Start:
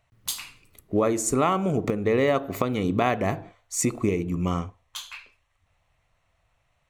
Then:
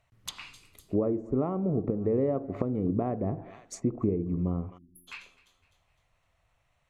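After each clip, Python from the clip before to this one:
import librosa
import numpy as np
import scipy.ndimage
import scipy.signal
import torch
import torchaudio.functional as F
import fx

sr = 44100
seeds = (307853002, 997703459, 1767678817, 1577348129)

y = fx.echo_thinned(x, sr, ms=254, feedback_pct=43, hz=190.0, wet_db=-21.5)
y = fx.spec_erase(y, sr, start_s=4.78, length_s=0.3, low_hz=370.0, high_hz=9900.0)
y = fx.env_lowpass_down(y, sr, base_hz=490.0, full_db=-22.5)
y = F.gain(torch.from_numpy(y), -2.5).numpy()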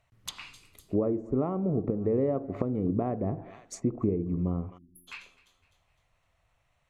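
y = x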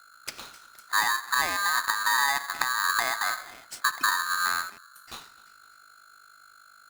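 y = fx.add_hum(x, sr, base_hz=50, snr_db=25)
y = y * np.sign(np.sin(2.0 * np.pi * 1400.0 * np.arange(len(y)) / sr))
y = F.gain(torch.from_numpy(y), 2.0).numpy()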